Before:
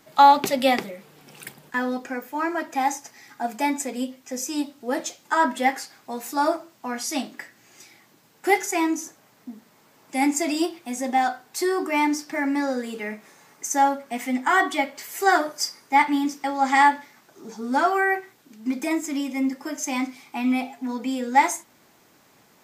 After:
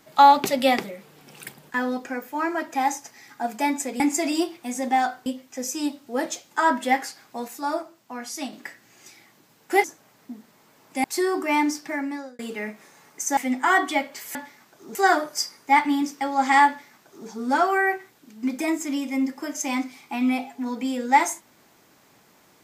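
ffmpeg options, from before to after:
-filter_complex "[0:a]asplit=11[s0][s1][s2][s3][s4][s5][s6][s7][s8][s9][s10];[s0]atrim=end=4.002[s11];[s1]atrim=start=10.218:end=11.482[s12];[s2]atrim=start=3.998:end=6.222[s13];[s3]atrim=start=6.218:end=7.272,asetpts=PTS-STARTPTS,volume=0.562[s14];[s4]atrim=start=7.268:end=8.582[s15];[s5]atrim=start=9.018:end=10.222[s16];[s6]atrim=start=11.478:end=12.83,asetpts=PTS-STARTPTS,afade=t=out:st=0.752:d=0.6[s17];[s7]atrim=start=12.83:end=13.812,asetpts=PTS-STARTPTS,afade=t=in:d=0.004:c=hsin[s18];[s8]atrim=start=14.198:end=15.182[s19];[s9]atrim=start=16.908:end=17.512[s20];[s10]atrim=start=15.178[s21];[s11][s12]acrossfade=d=0.004:c1=hsin:c2=hsin[s22];[s22][s13]acrossfade=d=0.004:c1=hsin:c2=hsin[s23];[s23][s14]acrossfade=d=0.004:c1=hsin:c2=hsin[s24];[s24][s15]acrossfade=d=0.004:c1=hsin:c2=hsin[s25];[s25][s16]acrossfade=d=0.004:c1=hsin:c2=hsin[s26];[s17][s18]concat=n=2:v=0:a=1[s27];[s26][s27]acrossfade=d=0.004:c1=hsin:c2=hsin[s28];[s28][s19]acrossfade=d=0.004:c1=hsin:c2=hsin[s29];[s29][s20]acrossfade=d=0.004:c1=hsin:c2=hsin[s30];[s30][s21]acrossfade=d=0.004:c1=hsin:c2=hsin"

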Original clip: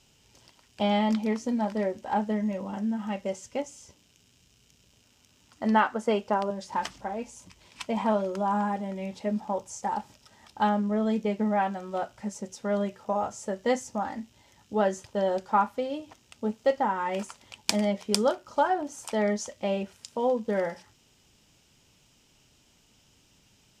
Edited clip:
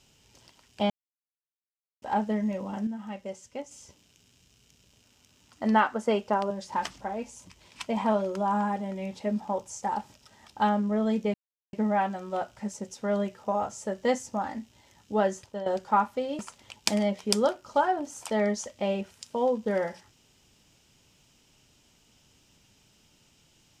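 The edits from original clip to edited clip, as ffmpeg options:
-filter_complex "[0:a]asplit=8[s0][s1][s2][s3][s4][s5][s6][s7];[s0]atrim=end=0.9,asetpts=PTS-STARTPTS,afade=t=out:st=0.896:d=0.004:c=hsin[s8];[s1]atrim=start=0.9:end=2.02,asetpts=PTS-STARTPTS,volume=0[s9];[s2]atrim=start=2.02:end=2.872,asetpts=PTS-STARTPTS,afade=t=in:d=0.004:c=hsin[s10];[s3]atrim=start=2.868:end=3.712,asetpts=PTS-STARTPTS,volume=0.501[s11];[s4]atrim=start=3.708:end=11.34,asetpts=PTS-STARTPTS,afade=t=out:st=7.628:d=0.004:c=hsin,apad=pad_dur=0.39[s12];[s5]atrim=start=11.34:end=15.27,asetpts=PTS-STARTPTS,afade=t=in:d=0.004:c=hsin,afade=t=out:st=3.44:d=0.49:c=qsin:silence=0.251189[s13];[s6]atrim=start=15.27:end=16.002,asetpts=PTS-STARTPTS,afade=t=in:d=0.004:c=hsin:silence=0.251189[s14];[s7]atrim=start=17.208[s15];[s8][s9][s10]concat=n=3:v=0:a=1[s16];[s16][s11]acrossfade=d=0.004:c1=hsin:c2=hsin[s17];[s12][s13][s14]concat=n=3:v=0:a=1[s18];[s17][s18]acrossfade=d=0.004:c1=hsin:c2=hsin[s19];[s19][s15]acrossfade=d=0.004:c1=hsin:c2=hsin"

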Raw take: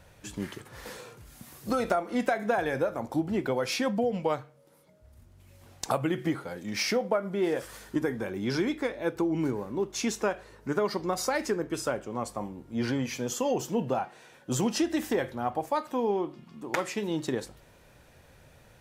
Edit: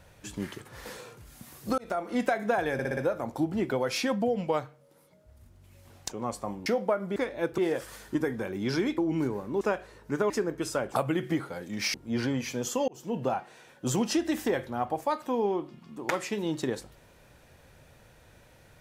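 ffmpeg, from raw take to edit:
-filter_complex "[0:a]asplit=16[s0][s1][s2][s3][s4][s5][s6][s7][s8][s9][s10][s11][s12][s13][s14][s15];[s0]atrim=end=1.78,asetpts=PTS-STARTPTS,afade=t=out:st=1.776:d=0.004:c=hsin[s16];[s1]atrim=start=1.78:end=2.792,asetpts=PTS-STARTPTS,afade=t=in:d=0.28[s17];[s2]atrim=start=2.728:end=2.792[s18];[s3]atrim=start=2.728:end=2.792[s19];[s4]atrim=start=2.728:end=2.792[s20];[s5]atrim=start=2.728:end=5.872[s21];[s6]atrim=start=12.038:end=12.592[s22];[s7]atrim=start=6.888:end=7.392[s23];[s8]atrim=start=8.788:end=9.212[s24];[s9]atrim=start=7.388:end=8.792[s25];[s10]atrim=start=9.208:end=9.842[s26];[s11]atrim=start=10.178:end=10.872[s27];[s12]atrim=start=11.418:end=12.042[s28];[s13]atrim=start=5.868:end=6.892[s29];[s14]atrim=start=12.588:end=13.53,asetpts=PTS-STARTPTS,afade=t=out:st=0.938:d=0.004:c=hsin[s30];[s15]atrim=start=13.53,asetpts=PTS-STARTPTS,afade=t=in:d=0.37[s31];[s16][s17]concat=n=2:v=0:a=1[s32];[s32][s18]acrossfade=d=0.004:c1=hsin:c2=hsin[s33];[s33][s19]acrossfade=d=0.004:c1=hsin:c2=hsin[s34];[s34][s20]acrossfade=d=0.004:c1=hsin:c2=hsin[s35];[s35][s21]acrossfade=d=0.004:c1=hsin:c2=hsin[s36];[s36][s22]acrossfade=d=0.004:c1=hsin:c2=hsin[s37];[s37][s23]acrossfade=d=0.004:c1=hsin:c2=hsin[s38];[s38][s24]acrossfade=d=0.004:c1=hsin:c2=hsin[s39];[s39][s25]acrossfade=d=0.004:c1=hsin:c2=hsin[s40];[s40][s26]acrossfade=d=0.004:c1=hsin:c2=hsin[s41];[s41][s27]acrossfade=d=0.004:c1=hsin:c2=hsin[s42];[s42][s28]acrossfade=d=0.004:c1=hsin:c2=hsin[s43];[s43][s29]acrossfade=d=0.004:c1=hsin:c2=hsin[s44];[s30][s31]concat=n=2:v=0:a=1[s45];[s44][s45]acrossfade=d=0.004:c1=hsin:c2=hsin"

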